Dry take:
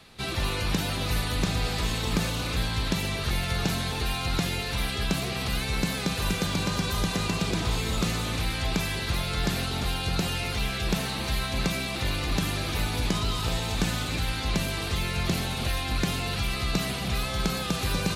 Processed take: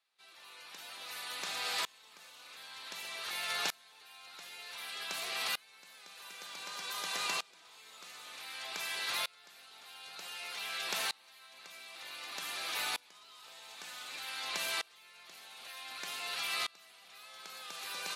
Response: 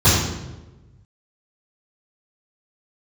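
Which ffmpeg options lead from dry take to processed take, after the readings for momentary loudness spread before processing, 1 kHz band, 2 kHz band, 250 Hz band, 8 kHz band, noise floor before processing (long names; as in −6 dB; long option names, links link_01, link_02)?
2 LU, −10.5 dB, −8.0 dB, −31.5 dB, −8.5 dB, −32 dBFS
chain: -af "highpass=870,aeval=exprs='val(0)*pow(10,-28*if(lt(mod(-0.54*n/s,1),2*abs(-0.54)/1000),1-mod(-0.54*n/s,1)/(2*abs(-0.54)/1000),(mod(-0.54*n/s,1)-2*abs(-0.54)/1000)/(1-2*abs(-0.54)/1000))/20)':channel_layout=same"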